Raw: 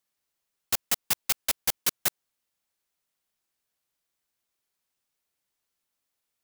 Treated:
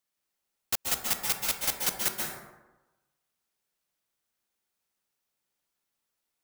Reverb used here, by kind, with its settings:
dense smooth reverb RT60 1.1 s, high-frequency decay 0.45×, pre-delay 120 ms, DRR −0.5 dB
level −3 dB

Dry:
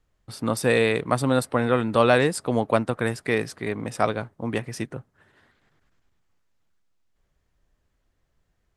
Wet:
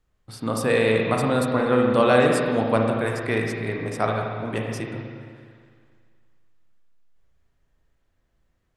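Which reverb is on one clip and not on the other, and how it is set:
spring reverb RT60 1.9 s, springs 36/56 ms, chirp 25 ms, DRR 0 dB
level −2 dB

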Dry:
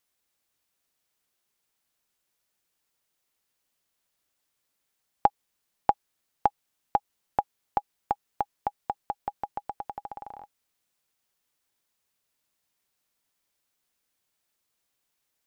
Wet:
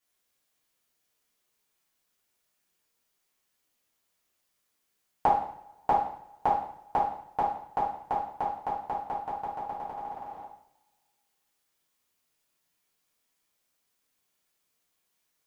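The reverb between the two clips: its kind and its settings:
coupled-rooms reverb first 0.63 s, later 2.1 s, from −26 dB, DRR −9.5 dB
level −8 dB

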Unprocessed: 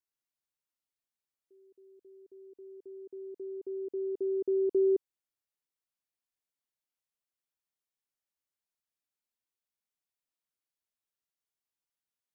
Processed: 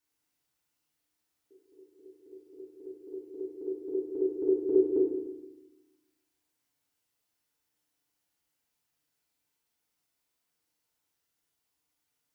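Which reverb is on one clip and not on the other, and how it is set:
feedback delay network reverb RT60 1 s, low-frequency decay 1.45×, high-frequency decay 0.8×, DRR −6 dB
level +4.5 dB

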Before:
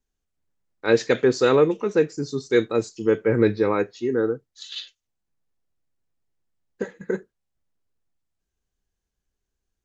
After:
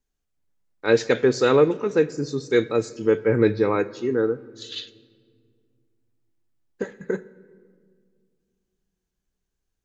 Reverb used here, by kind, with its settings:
rectangular room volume 3,200 cubic metres, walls mixed, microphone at 0.34 metres

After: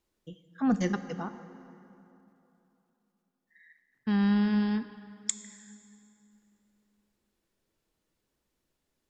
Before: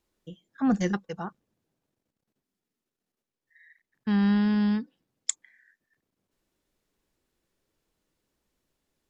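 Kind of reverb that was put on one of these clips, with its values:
dense smooth reverb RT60 3.1 s, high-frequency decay 0.65×, DRR 11 dB
level −2 dB

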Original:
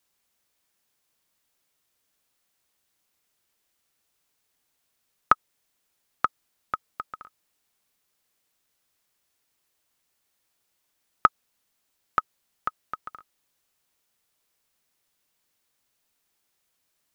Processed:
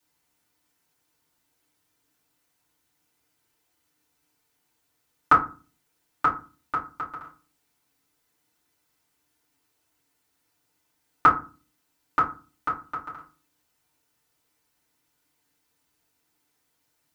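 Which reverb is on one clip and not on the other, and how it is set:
feedback delay network reverb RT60 0.34 s, low-frequency decay 1.55×, high-frequency decay 0.55×, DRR −8.5 dB
level −5.5 dB

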